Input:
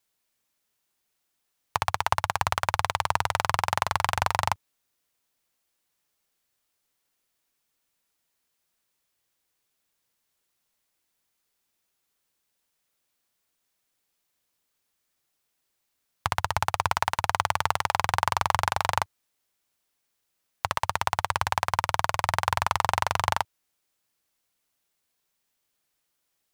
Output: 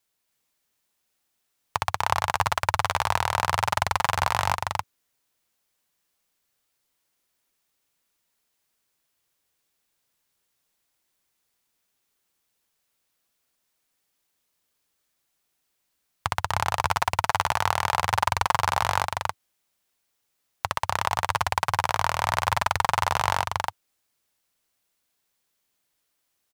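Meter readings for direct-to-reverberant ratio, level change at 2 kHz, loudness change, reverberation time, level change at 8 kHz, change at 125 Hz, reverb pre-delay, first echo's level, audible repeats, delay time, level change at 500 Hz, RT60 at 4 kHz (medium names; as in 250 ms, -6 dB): no reverb, +2.0 dB, +1.5 dB, no reverb, +2.0 dB, +2.0 dB, no reverb, -3.0 dB, 1, 277 ms, +2.0 dB, no reverb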